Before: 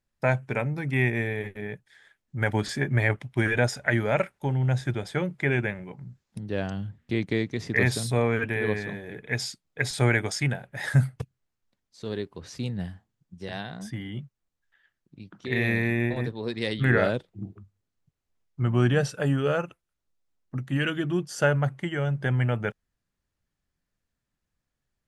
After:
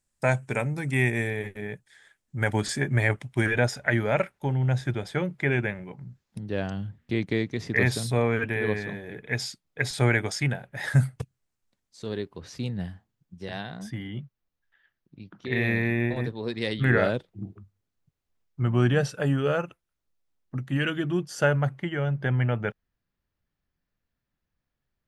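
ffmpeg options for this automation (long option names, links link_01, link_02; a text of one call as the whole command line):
ffmpeg -i in.wav -af "asetnsamples=nb_out_samples=441:pad=0,asendcmd='1.3 equalizer g 7.5;3.46 equalizer g -2;10.95 equalizer g 4.5;12.06 equalizer g -3;14.07 equalizer g -9.5;16.09 equalizer g -2.5;21.79 equalizer g -13',equalizer=frequency=8200:width_type=o:width=0.87:gain=15" out.wav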